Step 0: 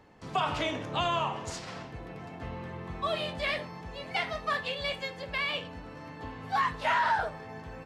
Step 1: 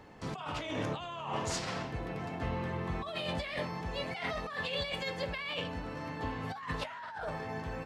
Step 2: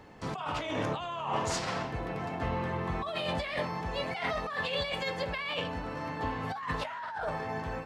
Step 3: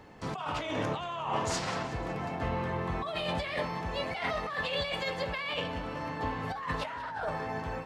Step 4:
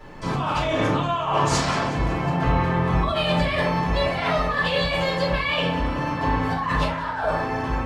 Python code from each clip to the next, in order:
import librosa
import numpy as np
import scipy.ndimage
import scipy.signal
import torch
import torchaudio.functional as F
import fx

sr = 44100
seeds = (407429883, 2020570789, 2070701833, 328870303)

y1 = fx.over_compress(x, sr, threshold_db=-37.0, ratio=-1.0)
y2 = fx.dynamic_eq(y1, sr, hz=950.0, q=0.74, threshold_db=-51.0, ratio=4.0, max_db=4)
y2 = fx.end_taper(y2, sr, db_per_s=140.0)
y2 = y2 * 10.0 ** (1.5 / 20.0)
y3 = fx.echo_split(y2, sr, split_hz=1300.0, low_ms=729, high_ms=185, feedback_pct=52, wet_db=-15.5)
y4 = fx.room_shoebox(y3, sr, seeds[0], volume_m3=210.0, walls='furnished', distance_m=5.8)